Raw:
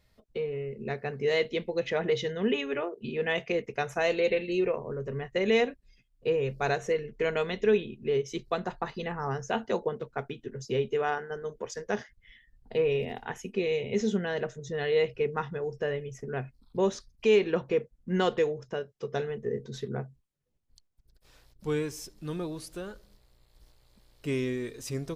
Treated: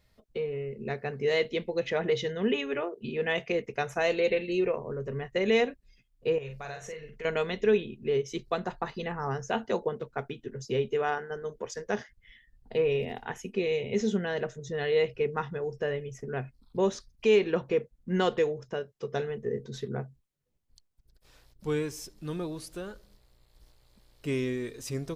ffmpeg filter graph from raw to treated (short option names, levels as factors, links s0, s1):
-filter_complex "[0:a]asettb=1/sr,asplit=3[s0][s1][s2];[s0]atrim=end=6.384[s3];[s1]atrim=start=6.38:end=7.25,asetpts=PTS-STARTPTS,afade=t=in:d=0.004:c=qsin,afade=t=out:st=0.866:d=0.004:c=qsin,equalizer=f=290:w=0.89:g=-10.5,acompressor=threshold=0.0112:ratio=3:attack=3.2:release=140:knee=1:detection=peak,asplit=2[s4][s5];[s5]adelay=44,volume=0.501[s6];[s4][s6]amix=inputs=2:normalize=0,atrim=end_sample=38367[s7];[s2]atrim=start=7.246[s8];[s3][s7]acrossfade=d=0.004:c1=hsin:c2=qsin[s9];[s9][s8]acrossfade=d=0.004:c1=qsin:c2=hsin"